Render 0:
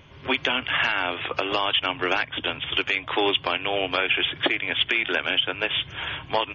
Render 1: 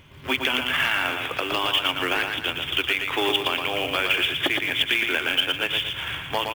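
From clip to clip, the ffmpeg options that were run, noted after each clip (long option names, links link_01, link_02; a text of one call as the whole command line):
ffmpeg -i in.wav -filter_complex "[0:a]equalizer=frequency=610:width_type=o:width=1.4:gain=-4,asplit=2[link_01][link_02];[link_02]aecho=0:1:116|232|348|464|580:0.562|0.236|0.0992|0.0417|0.0175[link_03];[link_01][link_03]amix=inputs=2:normalize=0,acrusher=bits=4:mode=log:mix=0:aa=0.000001" out.wav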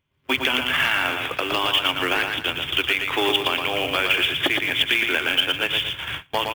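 ffmpeg -i in.wav -af "agate=range=-27dB:threshold=-30dB:ratio=16:detection=peak,volume=2dB" out.wav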